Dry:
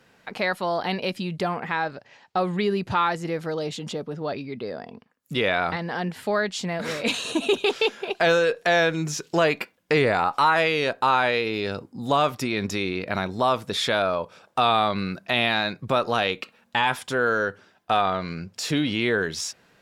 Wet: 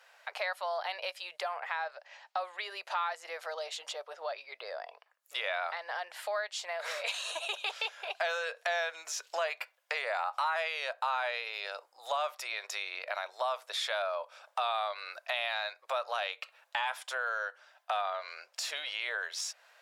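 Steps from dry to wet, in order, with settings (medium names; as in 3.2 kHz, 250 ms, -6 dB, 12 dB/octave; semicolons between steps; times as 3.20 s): elliptic high-pass 590 Hz, stop band 60 dB; compression 2:1, threshold -38 dBFS, peak gain reduction 12 dB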